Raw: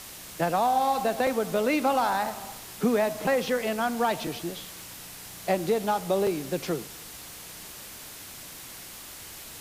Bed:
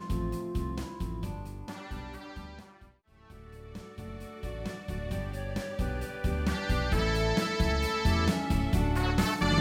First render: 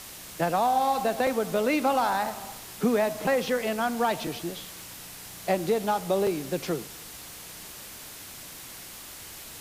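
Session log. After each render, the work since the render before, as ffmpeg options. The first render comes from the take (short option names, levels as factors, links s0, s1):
-af anull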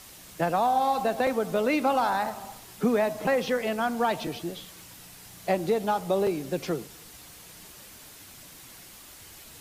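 -af "afftdn=nr=6:nf=-43"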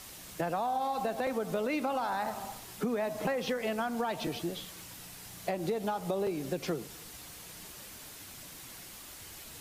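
-af "alimiter=limit=0.126:level=0:latency=1:release=155,acompressor=threshold=0.0316:ratio=3"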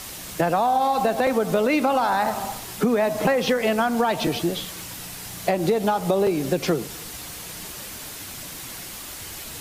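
-af "volume=3.76"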